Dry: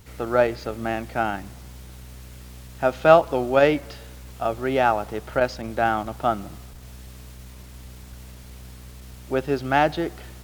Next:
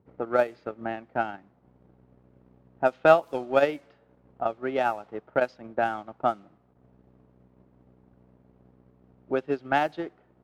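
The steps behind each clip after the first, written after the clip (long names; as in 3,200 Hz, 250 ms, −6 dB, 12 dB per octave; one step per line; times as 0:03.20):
high-pass filter 180 Hz 12 dB per octave
low-pass that shuts in the quiet parts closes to 630 Hz, open at −14.5 dBFS
transient designer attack +8 dB, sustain −7 dB
level −8 dB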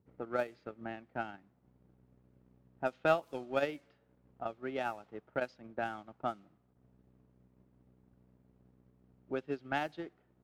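parametric band 720 Hz −6 dB 2.3 octaves
level −6 dB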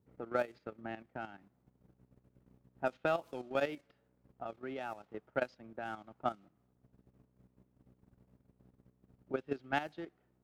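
output level in coarse steps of 11 dB
level +3 dB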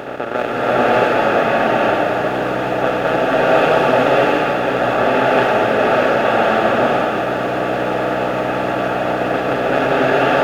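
compressor on every frequency bin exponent 0.2
slow-attack reverb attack 650 ms, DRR −9 dB
level +5.5 dB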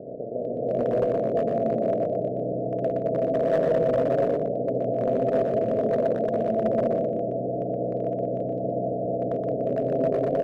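Chebyshev low-pass with heavy ripple 690 Hz, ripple 6 dB
asymmetric clip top −14 dBFS, bottom −11 dBFS
single-tap delay 121 ms −5.5 dB
level −5 dB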